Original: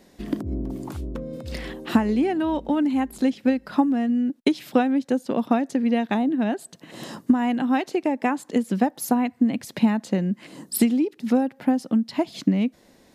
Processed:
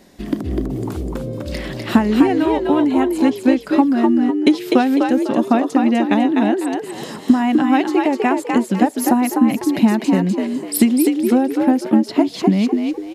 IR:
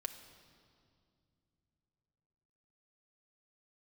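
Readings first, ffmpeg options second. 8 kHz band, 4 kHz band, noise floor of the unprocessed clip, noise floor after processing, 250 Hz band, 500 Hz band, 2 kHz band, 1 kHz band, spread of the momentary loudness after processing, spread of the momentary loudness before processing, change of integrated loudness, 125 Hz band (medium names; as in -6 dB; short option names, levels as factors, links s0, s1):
+7.0 dB, +7.0 dB, -56 dBFS, -34 dBFS, +7.0 dB, +7.5 dB, +7.0 dB, +7.5 dB, 10 LU, 12 LU, +7.0 dB, +6.0 dB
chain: -filter_complex "[0:a]bandreject=f=480:w=12,asplit=2[s0][s1];[s1]asplit=4[s2][s3][s4][s5];[s2]adelay=250,afreqshift=58,volume=0.631[s6];[s3]adelay=500,afreqshift=116,volume=0.195[s7];[s4]adelay=750,afreqshift=174,volume=0.061[s8];[s5]adelay=1000,afreqshift=232,volume=0.0188[s9];[s6][s7][s8][s9]amix=inputs=4:normalize=0[s10];[s0][s10]amix=inputs=2:normalize=0,volume=1.88"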